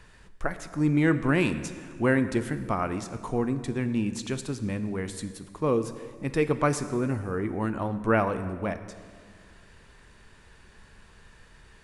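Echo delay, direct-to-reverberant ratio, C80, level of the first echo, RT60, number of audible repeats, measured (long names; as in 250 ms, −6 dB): no echo audible, 10.5 dB, 13.0 dB, no echo audible, 1.9 s, no echo audible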